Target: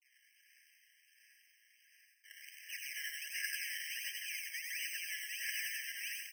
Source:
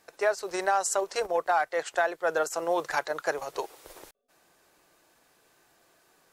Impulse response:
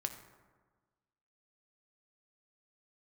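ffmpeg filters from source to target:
-filter_complex "[0:a]areverse,acrossover=split=210|3000[a][b][c];[b]acompressor=threshold=-31dB:ratio=6[d];[a][d][c]amix=inputs=3:normalize=0,acrusher=samples=24:mix=1:aa=0.000001:lfo=1:lforange=24:lforate=1.4,asoftclip=type=hard:threshold=-34.5dB,aecho=1:1:85|170|255|340|425|510:0.501|0.241|0.115|0.0554|0.0266|0.0128,asplit=2[e][f];[1:a]atrim=start_sample=2205,highshelf=f=6.6k:g=10,adelay=98[g];[f][g]afir=irnorm=-1:irlink=0,volume=-6.5dB[h];[e][h]amix=inputs=2:normalize=0,afftfilt=real='re*eq(mod(floor(b*sr/1024/1600),2),1)':imag='im*eq(mod(floor(b*sr/1024/1600),2),1)':win_size=1024:overlap=0.75,volume=3.5dB"

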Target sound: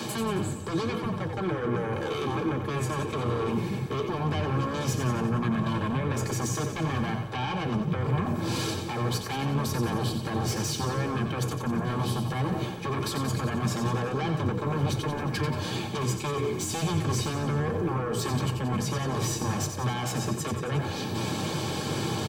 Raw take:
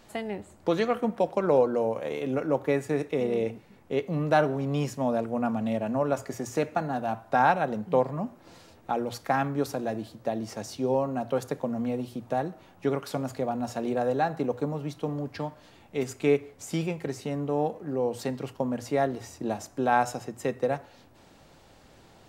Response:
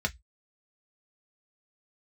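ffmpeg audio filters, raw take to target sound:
-filter_complex "[0:a]highpass=140,highshelf=f=7.3k:g=4.5,areverse,acompressor=threshold=-36dB:ratio=6,areverse,alimiter=level_in=15.5dB:limit=-24dB:level=0:latency=1:release=410,volume=-15.5dB,acrossover=split=300[a][b];[b]acompressor=threshold=-48dB:ratio=6[c];[a][c]amix=inputs=2:normalize=0,aeval=exprs='0.0133*sin(PI/2*3.98*val(0)/0.0133)':c=same,asplit=9[d][e][f][g][h][i][j][k][l];[e]adelay=90,afreqshift=-59,volume=-7.5dB[m];[f]adelay=180,afreqshift=-118,volume=-12.1dB[n];[g]adelay=270,afreqshift=-177,volume=-16.7dB[o];[h]adelay=360,afreqshift=-236,volume=-21.2dB[p];[i]adelay=450,afreqshift=-295,volume=-25.8dB[q];[j]adelay=540,afreqshift=-354,volume=-30.4dB[r];[k]adelay=630,afreqshift=-413,volume=-35dB[s];[l]adelay=720,afreqshift=-472,volume=-39.6dB[t];[d][m][n][o][p][q][r][s][t]amix=inputs=9:normalize=0[u];[1:a]atrim=start_sample=2205,asetrate=74970,aresample=44100[v];[u][v]afir=irnorm=-1:irlink=0,volume=7dB"

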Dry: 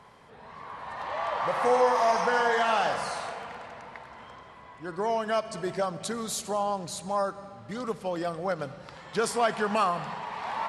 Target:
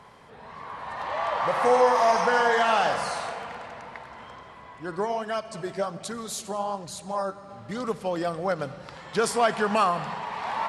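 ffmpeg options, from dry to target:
-filter_complex "[0:a]asplit=3[a][b][c];[a]afade=t=out:st=5.04:d=0.02[d];[b]flanger=delay=0.6:depth=9.9:regen=55:speed=1.3:shape=sinusoidal,afade=t=in:st=5.04:d=0.02,afade=t=out:st=7.48:d=0.02[e];[c]afade=t=in:st=7.48:d=0.02[f];[d][e][f]amix=inputs=3:normalize=0,volume=3dB"

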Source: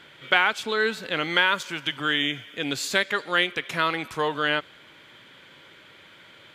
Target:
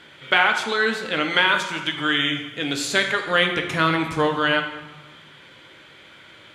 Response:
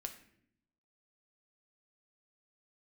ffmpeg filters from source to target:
-filter_complex "[0:a]asettb=1/sr,asplit=3[a][b][c];[a]atrim=end=3.264[d];[b]atrim=start=3.26:end=4.27,asetpts=PTS-STARTPTS,afade=t=in:d=0.004:c=qsin,afade=t=out:st=1.006:d=0.004:c=qsin,lowshelf=f=310:g=10[e];[c]atrim=start=4.266[f];[d][e]acrossfade=d=0.004:c1=hsin:c2=qsin[g];[g][f]acrossfade=d=0.004:c1=qsin:c2=hsin[h];[1:a]atrim=start_sample=2205,asetrate=22050,aresample=44100[i];[h][i]afir=irnorm=-1:irlink=0,volume=2dB"

